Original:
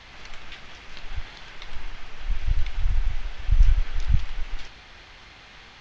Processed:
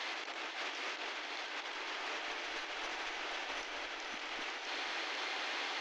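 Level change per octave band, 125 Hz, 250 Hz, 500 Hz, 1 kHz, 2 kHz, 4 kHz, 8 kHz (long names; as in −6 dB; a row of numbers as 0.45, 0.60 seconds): below −40 dB, −4.5 dB, +5.5 dB, +5.0 dB, +4.0 dB, +3.5 dB, can't be measured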